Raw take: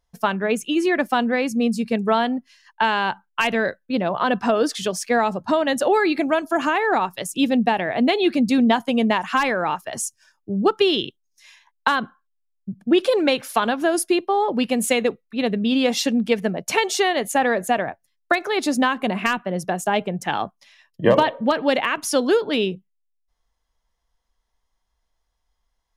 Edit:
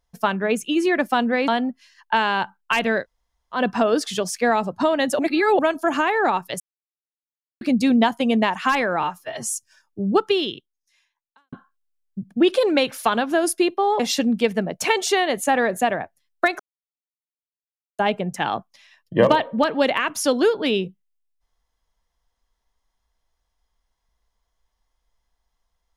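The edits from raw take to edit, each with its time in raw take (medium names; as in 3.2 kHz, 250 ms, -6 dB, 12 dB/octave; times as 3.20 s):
1.48–2.16 s: delete
3.70–4.24 s: room tone, crossfade 0.10 s
5.87–6.27 s: reverse
7.28–8.29 s: mute
9.71–10.06 s: stretch 1.5×
10.66–12.03 s: fade out quadratic
14.50–15.87 s: delete
18.47–19.86 s: mute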